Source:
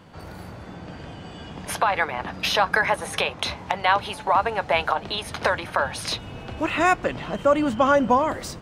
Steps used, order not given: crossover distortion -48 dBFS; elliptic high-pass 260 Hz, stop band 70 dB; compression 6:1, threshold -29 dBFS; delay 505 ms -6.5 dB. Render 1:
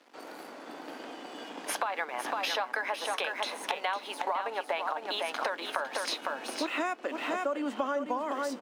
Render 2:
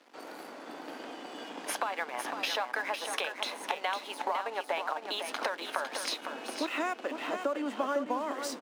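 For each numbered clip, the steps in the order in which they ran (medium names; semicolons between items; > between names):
delay > crossover distortion > elliptic high-pass > compression; compression > delay > crossover distortion > elliptic high-pass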